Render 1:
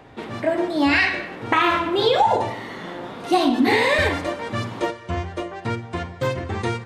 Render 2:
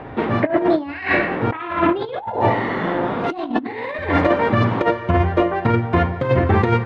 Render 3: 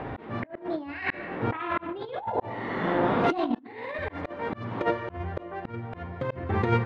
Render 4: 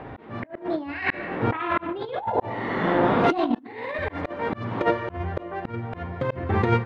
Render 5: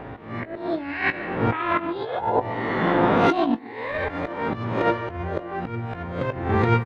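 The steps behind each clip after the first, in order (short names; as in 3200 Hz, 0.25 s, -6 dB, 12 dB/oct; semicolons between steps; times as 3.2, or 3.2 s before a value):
negative-ratio compressor -25 dBFS, ratio -0.5; LPF 2000 Hz 12 dB/oct; gain +8 dB
auto swell 0.769 s; gain -1 dB
AGC gain up to 8 dB; gain -3.5 dB
spectral swells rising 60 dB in 0.46 s; doubler 18 ms -11 dB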